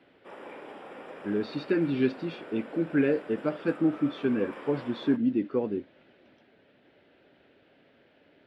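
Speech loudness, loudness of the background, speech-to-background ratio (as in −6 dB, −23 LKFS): −29.0 LKFS, −44.5 LKFS, 15.5 dB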